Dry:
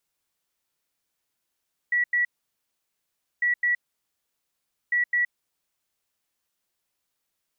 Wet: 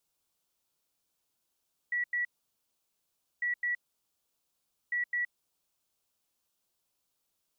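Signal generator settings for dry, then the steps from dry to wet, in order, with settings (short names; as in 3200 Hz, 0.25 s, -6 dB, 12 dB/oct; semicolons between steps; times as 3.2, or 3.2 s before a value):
beep pattern sine 1940 Hz, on 0.12 s, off 0.09 s, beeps 2, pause 1.17 s, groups 3, -19.5 dBFS
bell 1900 Hz -8.5 dB 0.68 oct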